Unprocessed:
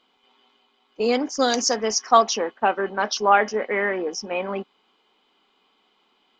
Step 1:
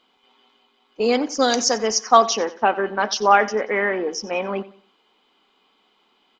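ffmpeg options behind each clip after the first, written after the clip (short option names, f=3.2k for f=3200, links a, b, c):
-af "aecho=1:1:91|182|273:0.126|0.0415|0.0137,volume=2dB"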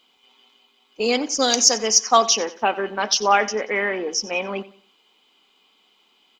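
-af "aexciter=amount=2.9:drive=2.8:freq=2.3k,volume=-2.5dB"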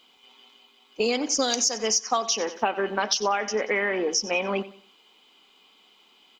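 -af "acompressor=threshold=-23dB:ratio=10,volume=2.5dB"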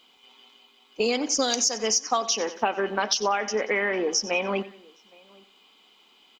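-filter_complex "[0:a]asplit=2[a][b];[b]adelay=816.3,volume=-27dB,highshelf=f=4k:g=-18.4[c];[a][c]amix=inputs=2:normalize=0"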